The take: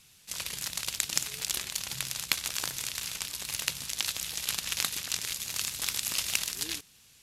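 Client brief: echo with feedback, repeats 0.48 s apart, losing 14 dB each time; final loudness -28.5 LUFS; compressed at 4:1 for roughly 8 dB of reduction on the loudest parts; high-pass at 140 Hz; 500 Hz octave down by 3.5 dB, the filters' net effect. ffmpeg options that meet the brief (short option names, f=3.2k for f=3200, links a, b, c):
-af "highpass=140,equalizer=f=500:t=o:g=-4.5,acompressor=threshold=-33dB:ratio=4,aecho=1:1:480|960:0.2|0.0399,volume=7.5dB"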